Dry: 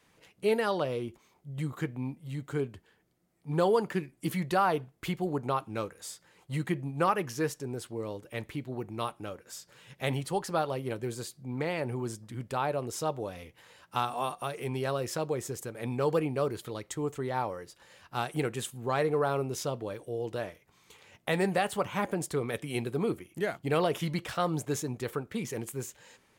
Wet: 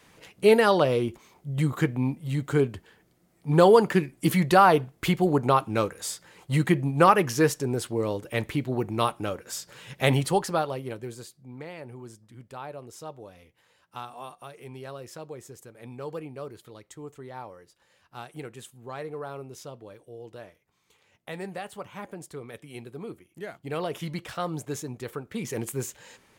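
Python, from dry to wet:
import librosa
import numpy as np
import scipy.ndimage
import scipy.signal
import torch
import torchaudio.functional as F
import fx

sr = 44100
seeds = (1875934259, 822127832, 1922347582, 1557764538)

y = fx.gain(x, sr, db=fx.line((10.26, 9.0), (10.68, 1.5), (11.68, -8.5), (23.23, -8.5), (24.08, -1.5), (25.21, -1.5), (25.63, 5.5)))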